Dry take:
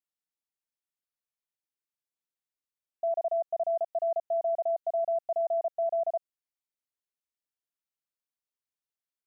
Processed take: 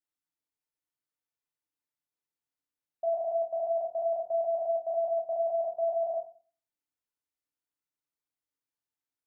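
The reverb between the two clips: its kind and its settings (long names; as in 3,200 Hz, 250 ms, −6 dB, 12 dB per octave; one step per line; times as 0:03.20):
feedback delay network reverb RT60 0.4 s, low-frequency decay 1.4×, high-frequency decay 0.25×, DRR 0 dB
level −3.5 dB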